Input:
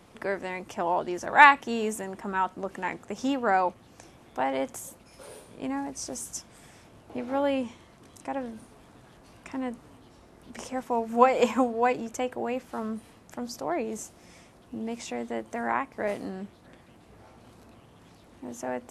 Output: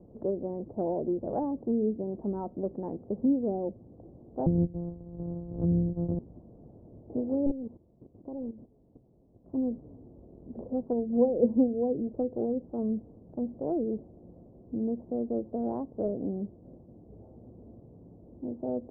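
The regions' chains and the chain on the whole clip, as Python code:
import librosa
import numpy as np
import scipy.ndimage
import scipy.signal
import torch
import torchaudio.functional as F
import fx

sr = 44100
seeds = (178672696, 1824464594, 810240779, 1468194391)

y = fx.chain(x, sr, fx.sample_sort(block=256),
    fx.low_shelf(hz=220.0, db=5.5),
    fx.band_squash(depth_pct=40), at=(4.46, 6.19))
y = fx.chain(y, sr, fx.level_steps(step_db=13),
    fx.doppler_dist(depth_ms=0.85), at=(7.46, 9.55))
y = fx.wiener(y, sr, points=15)
y = scipy.signal.sosfilt(scipy.signal.cheby2(4, 80, 3300.0, 'lowpass', fs=sr, output='sos'), y)
y = fx.env_lowpass_down(y, sr, base_hz=430.0, full_db=-28.0)
y = y * 10.0 ** (4.0 / 20.0)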